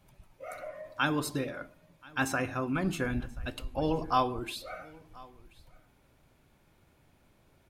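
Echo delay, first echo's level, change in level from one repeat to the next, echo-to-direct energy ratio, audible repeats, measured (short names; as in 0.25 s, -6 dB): 1.031 s, -23.5 dB, no steady repeat, -23.5 dB, 1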